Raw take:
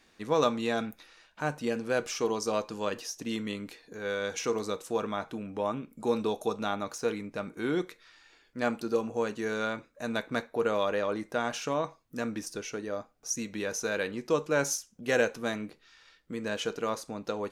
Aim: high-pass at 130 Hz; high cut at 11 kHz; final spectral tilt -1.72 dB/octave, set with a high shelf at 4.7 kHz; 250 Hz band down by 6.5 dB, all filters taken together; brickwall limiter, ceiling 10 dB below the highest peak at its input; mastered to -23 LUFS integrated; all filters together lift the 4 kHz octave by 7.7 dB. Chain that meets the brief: high-pass 130 Hz; low-pass 11 kHz; peaking EQ 250 Hz -8 dB; peaking EQ 4 kHz +7.5 dB; treble shelf 4.7 kHz +4.5 dB; trim +11 dB; peak limiter -9 dBFS

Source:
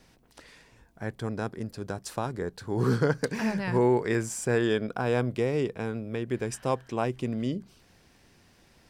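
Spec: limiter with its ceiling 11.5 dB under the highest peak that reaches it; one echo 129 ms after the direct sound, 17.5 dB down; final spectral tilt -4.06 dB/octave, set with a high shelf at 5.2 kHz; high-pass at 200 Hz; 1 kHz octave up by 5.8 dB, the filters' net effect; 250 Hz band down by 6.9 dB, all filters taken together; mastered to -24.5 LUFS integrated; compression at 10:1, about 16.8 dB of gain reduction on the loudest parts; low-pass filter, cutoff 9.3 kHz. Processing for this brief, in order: high-pass 200 Hz; low-pass 9.3 kHz; peaking EQ 250 Hz -8.5 dB; peaking EQ 1 kHz +8 dB; treble shelf 5.2 kHz -5.5 dB; compression 10:1, threshold -37 dBFS; peak limiter -31.5 dBFS; delay 129 ms -17.5 dB; trim +20 dB

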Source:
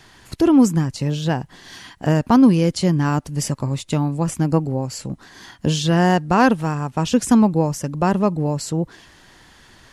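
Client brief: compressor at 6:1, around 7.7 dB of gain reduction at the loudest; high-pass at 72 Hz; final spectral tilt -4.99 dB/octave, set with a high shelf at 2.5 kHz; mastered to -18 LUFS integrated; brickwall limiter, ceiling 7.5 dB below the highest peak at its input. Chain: high-pass 72 Hz; treble shelf 2.5 kHz +5.5 dB; compression 6:1, threshold -17 dBFS; trim +6.5 dB; peak limiter -8.5 dBFS

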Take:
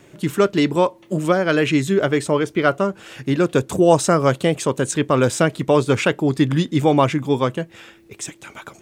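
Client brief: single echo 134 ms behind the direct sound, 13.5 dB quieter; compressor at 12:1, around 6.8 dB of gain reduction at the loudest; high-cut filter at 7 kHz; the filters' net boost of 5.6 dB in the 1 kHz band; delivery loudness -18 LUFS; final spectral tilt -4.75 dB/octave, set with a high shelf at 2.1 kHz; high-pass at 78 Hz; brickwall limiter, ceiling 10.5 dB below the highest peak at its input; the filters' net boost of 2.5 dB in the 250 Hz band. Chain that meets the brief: high-pass 78 Hz; low-pass 7 kHz; peaking EQ 250 Hz +3 dB; peaking EQ 1 kHz +5.5 dB; treble shelf 2.1 kHz +6.5 dB; compression 12:1, threshold -13 dBFS; peak limiter -12 dBFS; delay 134 ms -13.5 dB; trim +5.5 dB

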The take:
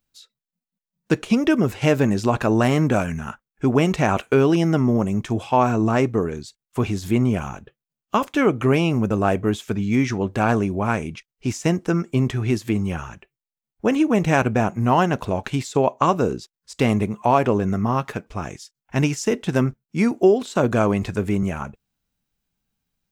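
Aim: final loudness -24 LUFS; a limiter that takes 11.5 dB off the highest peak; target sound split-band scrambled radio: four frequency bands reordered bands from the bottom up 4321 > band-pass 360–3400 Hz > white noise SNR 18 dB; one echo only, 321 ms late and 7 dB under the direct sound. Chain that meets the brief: peak limiter -15.5 dBFS; delay 321 ms -7 dB; four frequency bands reordered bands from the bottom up 4321; band-pass 360–3400 Hz; white noise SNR 18 dB; trim +4 dB

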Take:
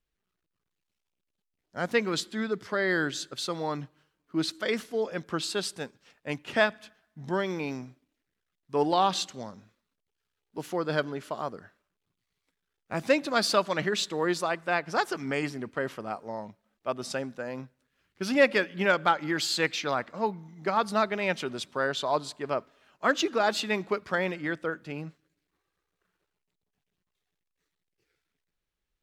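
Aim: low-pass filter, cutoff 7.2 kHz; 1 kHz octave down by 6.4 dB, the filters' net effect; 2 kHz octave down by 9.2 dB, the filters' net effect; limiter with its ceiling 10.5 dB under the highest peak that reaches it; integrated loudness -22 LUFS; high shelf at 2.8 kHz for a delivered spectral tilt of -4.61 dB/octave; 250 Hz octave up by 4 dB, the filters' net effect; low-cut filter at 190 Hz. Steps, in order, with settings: high-pass 190 Hz; low-pass 7.2 kHz; peaking EQ 250 Hz +7.5 dB; peaking EQ 1 kHz -6.5 dB; peaking EQ 2 kHz -7 dB; treble shelf 2.8 kHz -7 dB; trim +11 dB; peak limiter -10.5 dBFS

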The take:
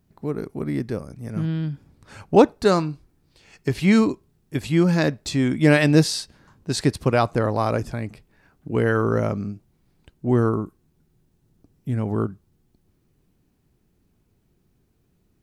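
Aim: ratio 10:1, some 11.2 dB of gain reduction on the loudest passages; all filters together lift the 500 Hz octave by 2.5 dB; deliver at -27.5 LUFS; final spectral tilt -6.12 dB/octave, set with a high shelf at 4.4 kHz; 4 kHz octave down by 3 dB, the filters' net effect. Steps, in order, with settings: peaking EQ 500 Hz +3 dB; peaking EQ 4 kHz -7.5 dB; treble shelf 4.4 kHz +6 dB; compression 10:1, threshold -17 dBFS; trim -2 dB

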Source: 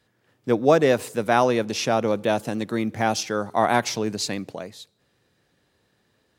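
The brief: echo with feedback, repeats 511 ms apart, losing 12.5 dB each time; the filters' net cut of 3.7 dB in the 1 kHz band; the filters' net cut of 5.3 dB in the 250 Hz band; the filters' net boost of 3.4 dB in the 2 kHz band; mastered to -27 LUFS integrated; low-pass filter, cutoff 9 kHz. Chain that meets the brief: low-pass 9 kHz; peaking EQ 250 Hz -6.5 dB; peaking EQ 1 kHz -6.5 dB; peaking EQ 2 kHz +7 dB; feedback delay 511 ms, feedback 24%, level -12.5 dB; trim -2.5 dB

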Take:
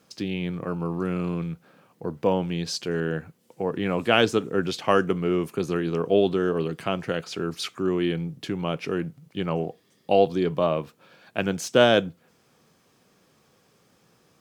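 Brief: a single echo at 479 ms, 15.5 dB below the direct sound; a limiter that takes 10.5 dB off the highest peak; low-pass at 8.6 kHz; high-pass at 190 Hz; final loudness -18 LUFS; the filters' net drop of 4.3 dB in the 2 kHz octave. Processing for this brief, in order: high-pass 190 Hz; low-pass 8.6 kHz; peaking EQ 2 kHz -6.5 dB; peak limiter -16 dBFS; delay 479 ms -15.5 dB; trim +11.5 dB

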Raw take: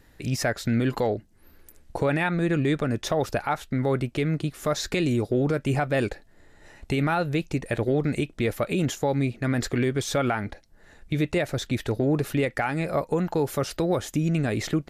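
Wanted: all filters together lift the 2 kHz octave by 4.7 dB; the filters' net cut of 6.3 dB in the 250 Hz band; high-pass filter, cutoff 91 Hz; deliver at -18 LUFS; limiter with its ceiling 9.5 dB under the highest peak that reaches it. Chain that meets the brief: high-pass 91 Hz; peaking EQ 250 Hz -9 dB; peaking EQ 2 kHz +6 dB; trim +12.5 dB; peak limiter -7 dBFS

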